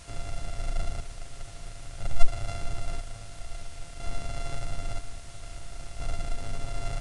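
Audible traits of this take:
a buzz of ramps at a fixed pitch in blocks of 64 samples
chopped level 0.5 Hz, depth 60%, duty 50%
a quantiser's noise floor 8 bits, dither triangular
AAC

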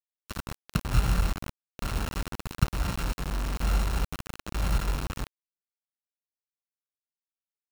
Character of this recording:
a buzz of ramps at a fixed pitch in blocks of 32 samples
chopped level 1.1 Hz, depth 65%, duty 45%
a quantiser's noise floor 6 bits, dither none

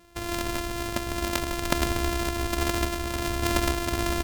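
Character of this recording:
a buzz of ramps at a fixed pitch in blocks of 128 samples
sample-and-hold tremolo
Ogg Vorbis

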